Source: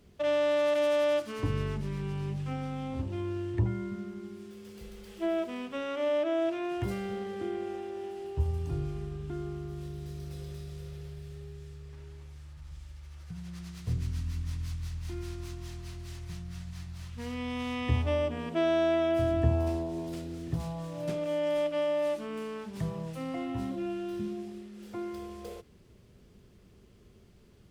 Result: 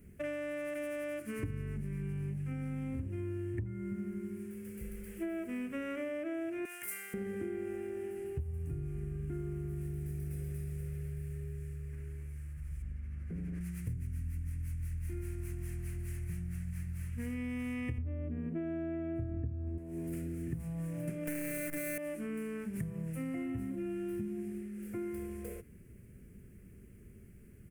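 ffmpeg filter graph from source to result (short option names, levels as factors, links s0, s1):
-filter_complex "[0:a]asettb=1/sr,asplit=3[s0][s1][s2];[s0]atrim=end=6.654[s3];[s1]atrim=start=6.65:end=7.14,asetpts=PTS-STARTPTS,afade=t=in:d=0.004:c=qsin,afade=t=out:st=0.486:d=0.004:c=qsin,highpass=1200,highshelf=f=5100:g=12[s4];[s2]atrim=start=7.136[s5];[s3][s4]acrossfade=d=0.004:c1=hsin:c2=qsin[s6];[s6][s5]acrossfade=d=0.004:c1=qsin:c2=hsin,asettb=1/sr,asplit=3[s7][s8][s9];[s7]atrim=end=12.824[s10];[s8]atrim=start=12.82:end=13.61,asetpts=PTS-STARTPTS,afade=t=in:d=0.004:c=qsin,afade=t=out:st=0.786:d=0.004:c=qsin,aemphasis=mode=reproduction:type=75fm,aeval=exprs='val(0)+0.00282*(sin(2*PI*50*n/s)+sin(2*PI*2*50*n/s)/2+sin(2*PI*3*50*n/s)/3+sin(2*PI*4*50*n/s)/4+sin(2*PI*5*50*n/s)/5)':c=same,aeval=exprs='0.0133*(abs(mod(val(0)/0.0133+3,4)-2)-1)':c=same[s11];[s9]atrim=start=13.606[s12];[s10][s11]acrossfade=d=0.004:c1=hsin:c2=qsin[s13];[s13][s12]acrossfade=d=0.004:c1=qsin:c2=hsin,asettb=1/sr,asplit=3[s14][s15][s16];[s14]atrim=end=17.984[s17];[s15]atrim=start=17.98:end=19.78,asetpts=PTS-STARTPTS,afade=t=in:d=0.004:c=qsin,afade=t=out:st=1.796:d=0.004:c=qsin,lowpass=f=1400:p=1,lowshelf=f=470:g=10.5[s18];[s16]atrim=start=19.776[s19];[s17][s18]acrossfade=d=0.004:c1=hsin:c2=qsin[s20];[s20][s19]acrossfade=d=0.004:c1=qsin:c2=hsin,asettb=1/sr,asplit=3[s21][s22][s23];[s21]atrim=end=21.274[s24];[s22]atrim=start=21.27:end=21.98,asetpts=PTS-STARTPTS,afade=t=in:d=0.004:c=qsin,afade=t=out:st=0.706:d=0.004:c=qsin,acrusher=bits=6:dc=4:mix=0:aa=0.000001,aecho=1:1:6.3:0.88,atrim=end_sample=31311[s25];[s23]atrim=start=21.976[s26];[s24][s25]acrossfade=d=0.004:c1=hsin:c2=qsin[s27];[s27][s26]acrossfade=d=0.004:c1=qsin:c2=hsin,firequalizer=gain_entry='entry(220,0);entry(890,-19);entry(1600,-3);entry(2300,-2);entry(3600,-24);entry(9400,4)':delay=0.05:min_phase=1,acompressor=threshold=0.0126:ratio=16,volume=1.58"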